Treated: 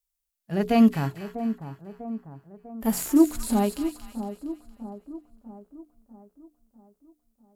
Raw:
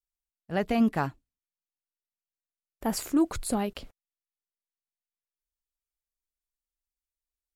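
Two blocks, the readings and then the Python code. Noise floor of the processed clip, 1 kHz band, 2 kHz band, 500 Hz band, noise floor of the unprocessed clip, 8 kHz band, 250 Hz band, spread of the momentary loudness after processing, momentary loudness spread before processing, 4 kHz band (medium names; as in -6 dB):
-82 dBFS, +2.5 dB, 0.0 dB, +5.0 dB, under -85 dBFS, +3.5 dB, +7.0 dB, 21 LU, 10 LU, +1.0 dB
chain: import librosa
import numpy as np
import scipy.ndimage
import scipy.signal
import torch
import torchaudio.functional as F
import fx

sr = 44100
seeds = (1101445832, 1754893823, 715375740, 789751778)

y = fx.high_shelf(x, sr, hz=5900.0, db=10.0)
y = fx.hum_notches(y, sr, base_hz=60, count=7)
y = fx.echo_split(y, sr, split_hz=1100.0, low_ms=647, high_ms=231, feedback_pct=52, wet_db=-11.0)
y = fx.hpss(y, sr, part='percussive', gain_db=-17)
y = F.gain(torch.from_numpy(y), 7.0).numpy()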